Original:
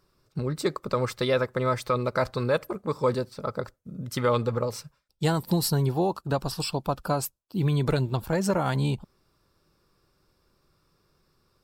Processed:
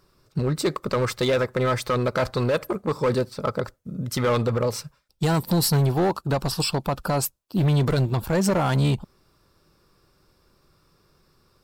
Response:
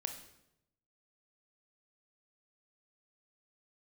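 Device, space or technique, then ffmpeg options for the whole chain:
limiter into clipper: -af "alimiter=limit=-17dB:level=0:latency=1:release=30,asoftclip=type=hard:threshold=-22.5dB,volume=6dB"

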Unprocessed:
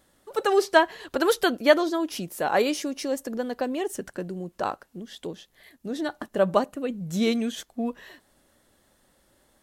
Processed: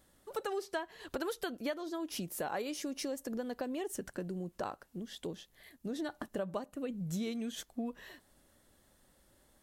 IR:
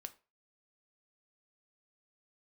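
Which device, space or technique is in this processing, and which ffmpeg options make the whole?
ASMR close-microphone chain: -af "lowshelf=f=160:g=6,acompressor=threshold=-29dB:ratio=6,highshelf=f=7.3k:g=4,volume=-5.5dB"

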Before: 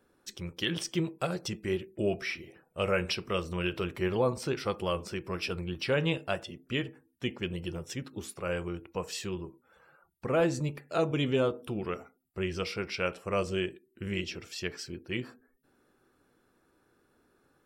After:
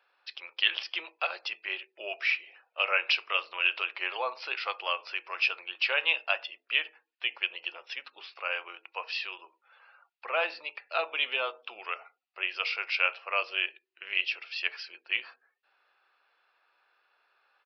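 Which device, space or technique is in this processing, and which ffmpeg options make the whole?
musical greeting card: -af "aresample=11025,aresample=44100,highpass=f=720:w=0.5412,highpass=f=720:w=1.3066,equalizer=f=2.6k:t=o:w=0.39:g=9.5,volume=3dB"

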